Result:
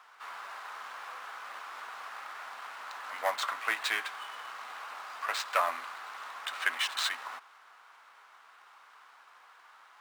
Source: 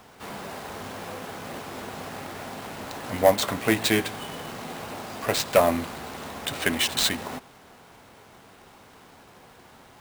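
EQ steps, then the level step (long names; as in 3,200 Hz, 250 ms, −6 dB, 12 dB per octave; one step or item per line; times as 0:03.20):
high-pass with resonance 1,200 Hz, resonance Q 2.5
high-shelf EQ 7,500 Hz −11.5 dB
−6.5 dB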